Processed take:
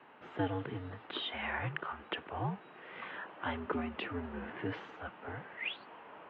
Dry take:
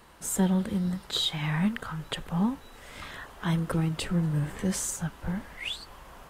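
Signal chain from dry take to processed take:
single-sideband voice off tune −85 Hz 290–3,000 Hz
level −1.5 dB

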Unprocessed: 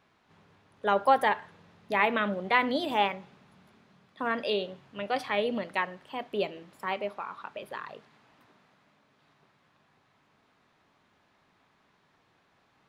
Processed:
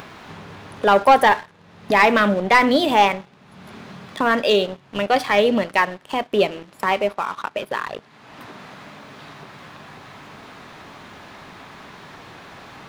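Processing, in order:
leveller curve on the samples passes 2
upward compression, threshold −25 dBFS
level +5 dB

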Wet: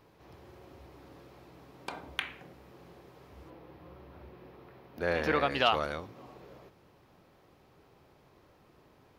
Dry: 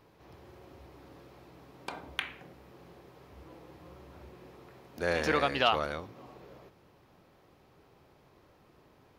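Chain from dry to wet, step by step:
0:03.50–0:05.51: parametric band 7,700 Hz −14 dB 1.1 octaves

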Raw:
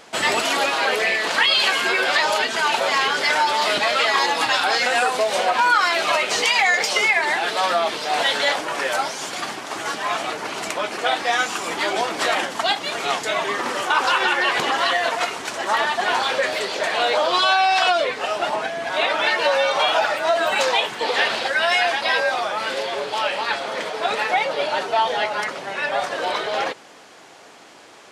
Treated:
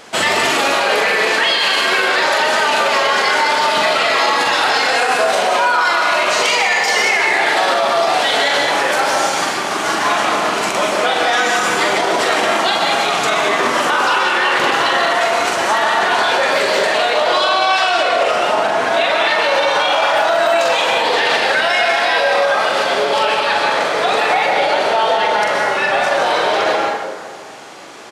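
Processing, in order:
double-tracking delay 43 ms −4.5 dB
dense smooth reverb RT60 1.6 s, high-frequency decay 0.5×, pre-delay 110 ms, DRR 0.5 dB
boost into a limiter +11 dB
level −5 dB

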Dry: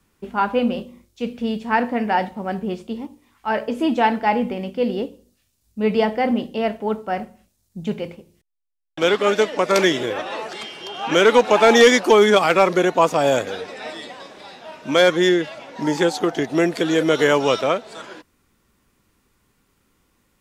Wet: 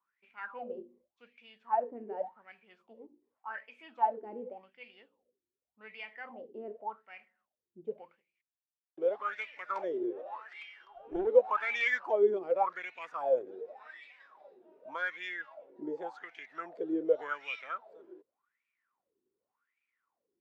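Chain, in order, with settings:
LFO wah 0.87 Hz 350–2,400 Hz, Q 13
0:10.85–0:11.27: tube saturation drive 22 dB, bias 0.8
level −2.5 dB

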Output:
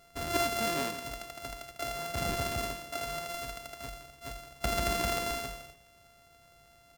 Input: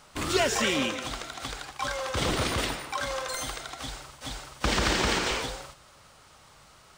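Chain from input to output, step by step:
samples sorted by size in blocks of 64 samples
far-end echo of a speakerphone 300 ms, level −22 dB
level −5 dB

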